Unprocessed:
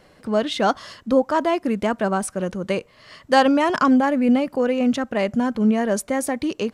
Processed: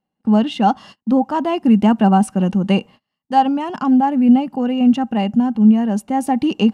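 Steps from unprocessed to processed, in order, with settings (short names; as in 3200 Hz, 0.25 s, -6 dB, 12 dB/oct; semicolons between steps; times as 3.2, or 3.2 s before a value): small resonant body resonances 210/800/2800 Hz, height 17 dB, ringing for 30 ms; AGC gain up to 11.5 dB; gate -34 dBFS, range -32 dB; gain -3 dB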